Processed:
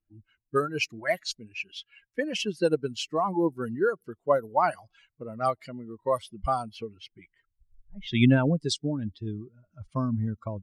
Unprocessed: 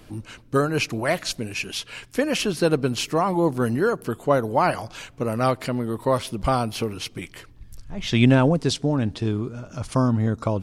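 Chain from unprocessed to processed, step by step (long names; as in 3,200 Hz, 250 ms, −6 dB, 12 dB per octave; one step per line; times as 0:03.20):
spectral dynamics exaggerated over time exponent 2
low-pass that shuts in the quiet parts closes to 1,800 Hz, open at −21 dBFS
low-shelf EQ 110 Hz −6 dB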